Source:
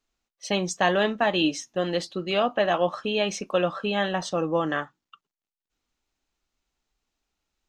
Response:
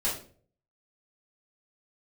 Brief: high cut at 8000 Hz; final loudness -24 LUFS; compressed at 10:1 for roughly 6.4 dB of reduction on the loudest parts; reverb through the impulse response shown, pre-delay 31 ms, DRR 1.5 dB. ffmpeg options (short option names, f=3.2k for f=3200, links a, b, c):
-filter_complex "[0:a]lowpass=8k,acompressor=threshold=-24dB:ratio=10,asplit=2[a][b];[1:a]atrim=start_sample=2205,adelay=31[c];[b][c]afir=irnorm=-1:irlink=0,volume=-9.5dB[d];[a][d]amix=inputs=2:normalize=0,volume=3.5dB"